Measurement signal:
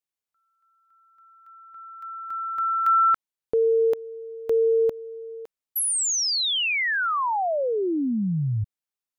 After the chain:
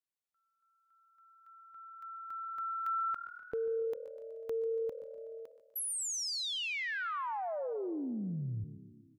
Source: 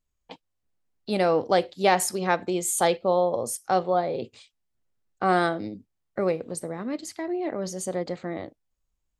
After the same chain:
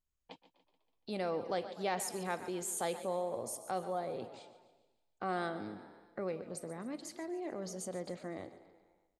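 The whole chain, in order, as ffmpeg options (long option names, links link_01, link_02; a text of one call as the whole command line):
ffmpeg -i in.wav -filter_complex "[0:a]asplit=2[link_01][link_02];[link_02]asplit=5[link_03][link_04][link_05][link_06][link_07];[link_03]adelay=124,afreqshift=38,volume=-19dB[link_08];[link_04]adelay=248,afreqshift=76,volume=-23.9dB[link_09];[link_05]adelay=372,afreqshift=114,volume=-28.8dB[link_10];[link_06]adelay=496,afreqshift=152,volume=-33.6dB[link_11];[link_07]adelay=620,afreqshift=190,volume=-38.5dB[link_12];[link_08][link_09][link_10][link_11][link_12]amix=inputs=5:normalize=0[link_13];[link_01][link_13]amix=inputs=2:normalize=0,acompressor=threshold=-37dB:ratio=1.5:attack=9.3:release=27:knee=6,asplit=2[link_14][link_15];[link_15]aecho=0:1:143|286|429|572|715:0.15|0.0763|0.0389|0.0198|0.0101[link_16];[link_14][link_16]amix=inputs=2:normalize=0,volume=-8dB" out.wav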